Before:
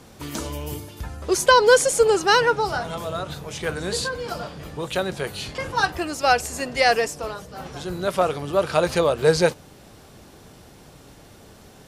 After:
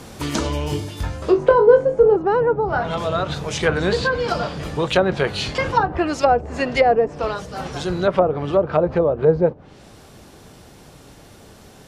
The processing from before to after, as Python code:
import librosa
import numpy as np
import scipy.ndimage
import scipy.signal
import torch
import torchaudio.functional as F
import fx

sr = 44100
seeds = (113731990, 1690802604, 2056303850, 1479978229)

y = fx.env_lowpass_down(x, sr, base_hz=640.0, full_db=-17.0)
y = fx.rider(y, sr, range_db=3, speed_s=2.0)
y = fx.room_flutter(y, sr, wall_m=3.6, rt60_s=0.23, at=(0.65, 2.16))
y = y * 10.0 ** (5.5 / 20.0)